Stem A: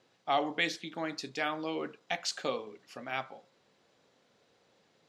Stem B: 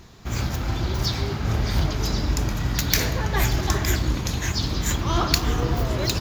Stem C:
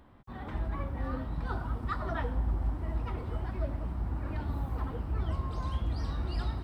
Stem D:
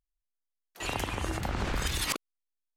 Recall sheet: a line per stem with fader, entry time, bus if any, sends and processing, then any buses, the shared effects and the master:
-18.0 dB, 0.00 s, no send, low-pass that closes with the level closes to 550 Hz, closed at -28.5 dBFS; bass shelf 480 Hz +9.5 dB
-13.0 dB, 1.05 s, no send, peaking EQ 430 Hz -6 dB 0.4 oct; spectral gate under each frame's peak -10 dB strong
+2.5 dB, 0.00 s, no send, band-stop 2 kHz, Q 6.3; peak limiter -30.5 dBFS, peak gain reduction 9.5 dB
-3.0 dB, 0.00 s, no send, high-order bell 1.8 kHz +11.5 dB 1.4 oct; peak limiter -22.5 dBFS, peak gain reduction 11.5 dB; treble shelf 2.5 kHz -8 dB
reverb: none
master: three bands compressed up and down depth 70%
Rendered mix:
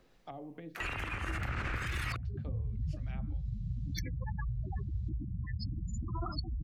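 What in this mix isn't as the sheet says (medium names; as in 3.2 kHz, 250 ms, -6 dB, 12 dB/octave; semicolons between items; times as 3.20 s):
stem A -18.0 dB -> -24.0 dB; stem C: muted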